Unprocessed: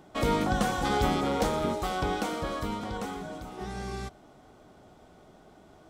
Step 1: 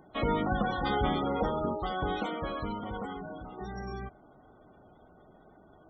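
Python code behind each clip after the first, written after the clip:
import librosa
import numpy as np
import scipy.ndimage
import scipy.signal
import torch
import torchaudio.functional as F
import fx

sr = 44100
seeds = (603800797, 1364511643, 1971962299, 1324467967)

y = fx.spec_gate(x, sr, threshold_db=-20, keep='strong')
y = fx.high_shelf(y, sr, hz=3600.0, db=9.0)
y = y * 10.0 ** (-2.5 / 20.0)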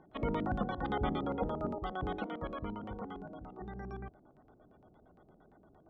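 y = fx.filter_lfo_lowpass(x, sr, shape='square', hz=8.7, low_hz=390.0, high_hz=3100.0, q=0.77)
y = y * 10.0 ** (-4.0 / 20.0)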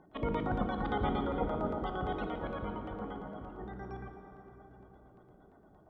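y = fx.rev_plate(x, sr, seeds[0], rt60_s=4.1, hf_ratio=0.55, predelay_ms=0, drr_db=4.0)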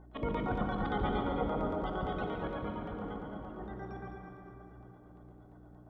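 y = fx.add_hum(x, sr, base_hz=60, snr_db=17)
y = fx.echo_heads(y, sr, ms=70, heads='second and third', feedback_pct=48, wet_db=-8)
y = y * 10.0 ** (-1.0 / 20.0)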